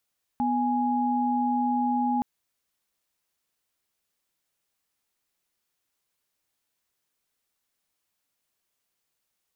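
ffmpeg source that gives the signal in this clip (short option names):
-f lavfi -i "aevalsrc='0.0562*(sin(2*PI*246.94*t)+sin(2*PI*830.61*t))':d=1.82:s=44100"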